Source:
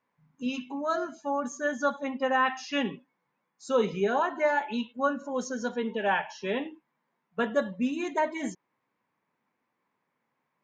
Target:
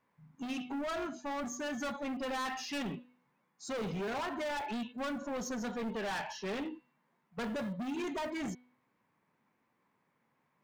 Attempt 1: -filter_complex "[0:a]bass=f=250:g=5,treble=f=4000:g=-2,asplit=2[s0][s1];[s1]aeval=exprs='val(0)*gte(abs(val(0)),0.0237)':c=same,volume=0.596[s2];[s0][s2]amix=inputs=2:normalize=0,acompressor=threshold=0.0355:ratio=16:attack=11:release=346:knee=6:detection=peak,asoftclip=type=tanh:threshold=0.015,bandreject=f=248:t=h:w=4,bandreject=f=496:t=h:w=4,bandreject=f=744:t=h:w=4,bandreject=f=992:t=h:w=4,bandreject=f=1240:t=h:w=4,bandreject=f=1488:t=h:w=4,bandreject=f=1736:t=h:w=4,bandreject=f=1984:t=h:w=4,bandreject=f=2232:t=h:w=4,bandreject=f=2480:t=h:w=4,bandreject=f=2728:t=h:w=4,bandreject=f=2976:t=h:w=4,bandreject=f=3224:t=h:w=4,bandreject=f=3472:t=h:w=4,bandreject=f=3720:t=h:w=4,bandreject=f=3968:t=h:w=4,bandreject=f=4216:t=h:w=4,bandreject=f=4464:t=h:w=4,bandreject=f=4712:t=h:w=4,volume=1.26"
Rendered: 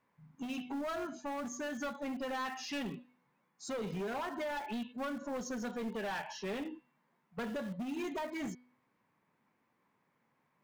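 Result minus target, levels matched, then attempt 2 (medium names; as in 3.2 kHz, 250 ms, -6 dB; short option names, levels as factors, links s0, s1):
compression: peak gain reduction +9 dB
-filter_complex "[0:a]bass=f=250:g=5,treble=f=4000:g=-2,asplit=2[s0][s1];[s1]aeval=exprs='val(0)*gte(abs(val(0)),0.0237)':c=same,volume=0.596[s2];[s0][s2]amix=inputs=2:normalize=0,acompressor=threshold=0.106:ratio=16:attack=11:release=346:knee=6:detection=peak,asoftclip=type=tanh:threshold=0.015,bandreject=f=248:t=h:w=4,bandreject=f=496:t=h:w=4,bandreject=f=744:t=h:w=4,bandreject=f=992:t=h:w=4,bandreject=f=1240:t=h:w=4,bandreject=f=1488:t=h:w=4,bandreject=f=1736:t=h:w=4,bandreject=f=1984:t=h:w=4,bandreject=f=2232:t=h:w=4,bandreject=f=2480:t=h:w=4,bandreject=f=2728:t=h:w=4,bandreject=f=2976:t=h:w=4,bandreject=f=3224:t=h:w=4,bandreject=f=3472:t=h:w=4,bandreject=f=3720:t=h:w=4,bandreject=f=3968:t=h:w=4,bandreject=f=4216:t=h:w=4,bandreject=f=4464:t=h:w=4,bandreject=f=4712:t=h:w=4,volume=1.26"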